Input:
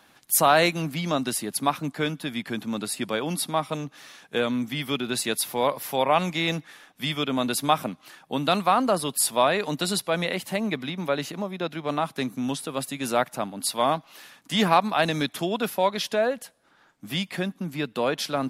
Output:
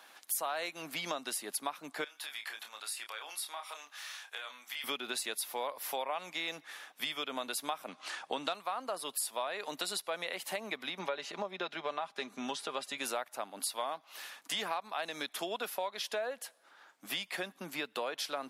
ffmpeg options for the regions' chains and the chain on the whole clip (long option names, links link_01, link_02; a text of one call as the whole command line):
ffmpeg -i in.wav -filter_complex "[0:a]asettb=1/sr,asplit=3[link_01][link_02][link_03];[link_01]atrim=end=2.044[link_04];[link_02]atrim=start=2.04:end=4.84,asetpts=PTS-STARTPTS,afade=type=in:duration=0.004:curve=qsin,afade=type=out:start_time=2.796:duration=0.004:curve=qsin,acompressor=threshold=-36dB:ratio=4:attack=3.2:release=140:knee=1:detection=peak,highpass=990,asplit=2[link_05][link_06];[link_06]adelay=28,volume=-6dB[link_07];[link_05][link_07]amix=inputs=2:normalize=0,atrim=end_sample=123480[link_08];[link_03]atrim=start=4.836[link_09];[link_04][link_08]acrossfade=duration=0.004:curve1=hsin:curve2=qsin[link_10];[link_10][link_09]acrossfade=duration=0.004:curve1=qsin:curve2=hsin,asettb=1/sr,asplit=3[link_11][link_12][link_13];[link_11]atrim=end=7.884[link_14];[link_12]atrim=start=7.88:end=8.53,asetpts=PTS-STARTPTS,afade=type=in:duration=0.004:curve=qsin,afade=type=out:start_time=0.646:duration=0.004:curve=qsin,lowpass=frequency=8900:width=0.5412,lowpass=frequency=8900:width=1.3066,acontrast=51[link_15];[link_13]atrim=start=8.526[link_16];[link_14][link_15]acrossfade=duration=0.004:curve1=hsin:curve2=qsin[link_17];[link_17][link_16]acrossfade=duration=0.004:curve1=qsin:curve2=hsin,asettb=1/sr,asplit=3[link_18][link_19][link_20];[link_18]atrim=end=10.994[link_21];[link_19]atrim=start=10.99:end=12.98,asetpts=PTS-STARTPTS,afade=type=in:duration=0.004:curve=qsin,afade=type=out:start_time=1.986:duration=0.004:curve=qsin,lowpass=6200,aecho=1:1:5:0.43,atrim=end_sample=87759[link_22];[link_20]atrim=start=12.976[link_23];[link_21][link_22]acrossfade=duration=0.004:curve1=hsin:curve2=qsin[link_24];[link_24][link_23]acrossfade=duration=0.004:curve1=qsin:curve2=hsin,highpass=530,acompressor=threshold=-35dB:ratio=6,volume=1dB" out.wav